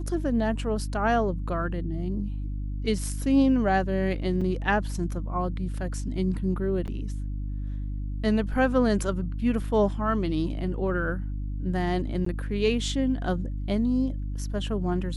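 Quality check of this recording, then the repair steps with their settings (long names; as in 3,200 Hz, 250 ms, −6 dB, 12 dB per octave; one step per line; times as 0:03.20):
mains hum 50 Hz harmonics 6 −31 dBFS
0:04.41–0:04.42: drop-out 5.2 ms
0:06.87–0:06.88: drop-out 8.4 ms
0:12.25–0:12.26: drop-out 14 ms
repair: hum removal 50 Hz, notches 6
repair the gap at 0:04.41, 5.2 ms
repair the gap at 0:06.87, 8.4 ms
repair the gap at 0:12.25, 14 ms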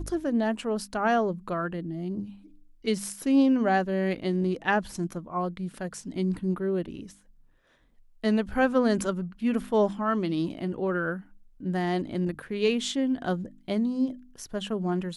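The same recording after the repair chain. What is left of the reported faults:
none of them is left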